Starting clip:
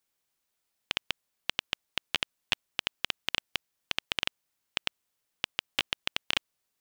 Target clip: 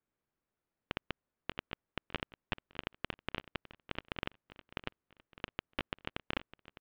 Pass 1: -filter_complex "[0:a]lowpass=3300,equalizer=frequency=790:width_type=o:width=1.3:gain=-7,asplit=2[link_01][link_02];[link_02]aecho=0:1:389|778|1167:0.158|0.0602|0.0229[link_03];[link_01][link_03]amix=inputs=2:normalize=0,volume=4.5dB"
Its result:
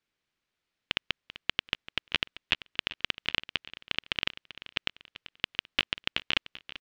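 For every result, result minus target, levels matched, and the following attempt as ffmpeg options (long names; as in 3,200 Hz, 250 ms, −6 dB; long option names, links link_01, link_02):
1,000 Hz band −8.5 dB; echo 218 ms early
-filter_complex "[0:a]lowpass=1100,equalizer=frequency=790:width_type=o:width=1.3:gain=-7,asplit=2[link_01][link_02];[link_02]aecho=0:1:389|778|1167:0.158|0.0602|0.0229[link_03];[link_01][link_03]amix=inputs=2:normalize=0,volume=4.5dB"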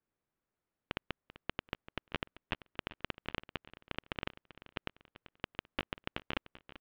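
echo 218 ms early
-filter_complex "[0:a]lowpass=1100,equalizer=frequency=790:width_type=o:width=1.3:gain=-7,asplit=2[link_01][link_02];[link_02]aecho=0:1:607|1214|1821:0.158|0.0602|0.0229[link_03];[link_01][link_03]amix=inputs=2:normalize=0,volume=4.5dB"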